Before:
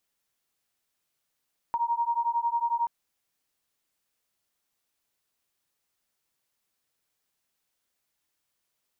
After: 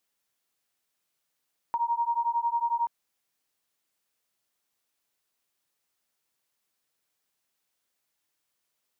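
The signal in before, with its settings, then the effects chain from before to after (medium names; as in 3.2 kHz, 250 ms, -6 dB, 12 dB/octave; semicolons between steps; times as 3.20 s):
beating tones 933 Hz, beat 11 Hz, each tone -27.5 dBFS 1.13 s
bass shelf 110 Hz -7.5 dB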